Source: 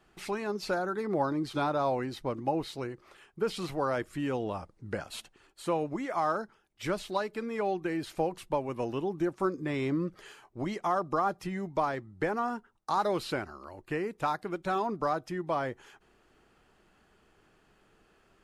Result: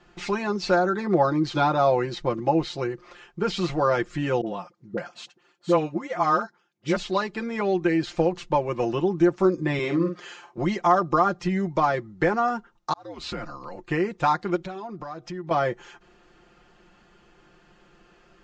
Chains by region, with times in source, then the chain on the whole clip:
0:04.41–0:06.96: high-pass filter 120 Hz 24 dB per octave + all-pass dispersion highs, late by 54 ms, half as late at 660 Hz + expander for the loud parts, over −44 dBFS
0:09.79–0:10.58: high-pass filter 100 Hz + low-shelf EQ 150 Hz −10.5 dB + double-tracking delay 49 ms −6.5 dB
0:12.93–0:13.76: downward compressor 10 to 1, threshold −35 dBFS + volume swells 433 ms + frequency shifter −86 Hz
0:14.56–0:15.51: low-pass filter 8,300 Hz + downward compressor 3 to 1, threshold −44 dBFS
whole clip: Butterworth low-pass 7,200 Hz 48 dB per octave; comb filter 5.7 ms, depth 69%; level +6.5 dB

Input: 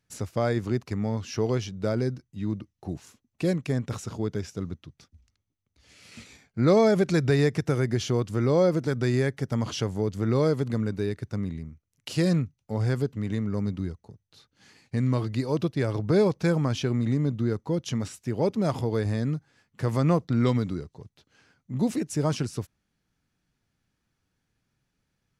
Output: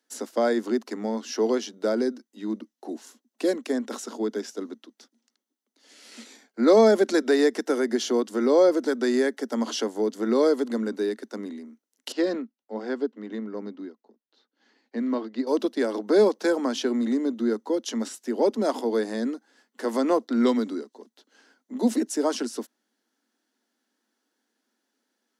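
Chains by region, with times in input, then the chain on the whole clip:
0:12.12–0:15.47: high-frequency loss of the air 170 metres + expander for the loud parts, over −37 dBFS
whole clip: Butterworth high-pass 220 Hz 96 dB per octave; parametric band 2,400 Hz −9 dB 0.34 octaves; notch filter 1,200 Hz, Q 12; level +4 dB

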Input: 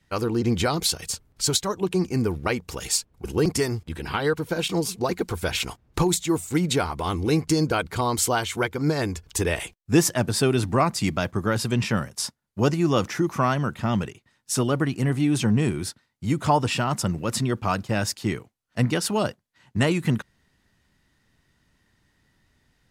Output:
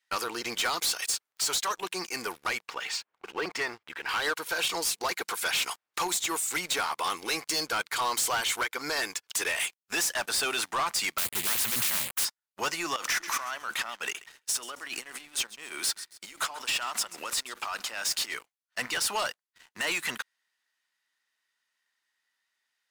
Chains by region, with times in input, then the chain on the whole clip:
0:02.68–0:04.09: low-pass filter 2,300 Hz + upward compression, threshold −41 dBFS
0:11.18–0:12.25: hold until the input has moved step −37 dBFS + high shelf with overshoot 7,500 Hz +8.5 dB, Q 1.5 + every bin compressed towards the loudest bin 4 to 1
0:12.96–0:18.34: compressor whose output falls as the input rises −33 dBFS + high-pass filter 190 Hz 24 dB per octave + repeating echo 134 ms, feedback 41%, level −21 dB
whole clip: high-pass filter 1,200 Hz 12 dB per octave; brickwall limiter −19.5 dBFS; leveller curve on the samples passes 3; level −3 dB

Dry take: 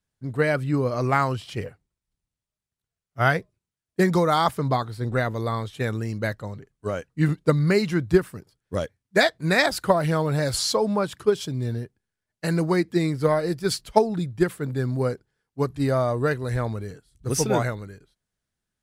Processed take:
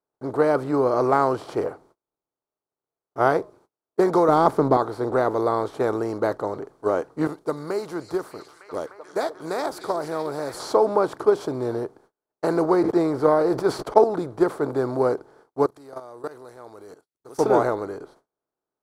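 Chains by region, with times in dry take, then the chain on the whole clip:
0:04.28–0:04.77: gain on one half-wave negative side −3 dB + parametric band 180 Hz +13 dB 1.9 octaves
0:07.27–0:10.60: first-order pre-emphasis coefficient 0.8 + echo through a band-pass that steps 302 ms, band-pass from 5,700 Hz, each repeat −0.7 octaves, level −8 dB
0:12.65–0:14.04: noise gate −45 dBFS, range −47 dB + parametric band 10,000 Hz −5 dB 2.1 octaves + level that may fall only so fast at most 66 dB per second
0:15.66–0:17.39: high-pass filter 76 Hz 6 dB per octave + output level in coarse steps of 21 dB + first-order pre-emphasis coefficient 0.9
whole clip: compressor on every frequency bin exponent 0.6; noise gate −49 dBFS, range −30 dB; flat-topped bell 590 Hz +15 dB 2.6 octaves; level −14 dB

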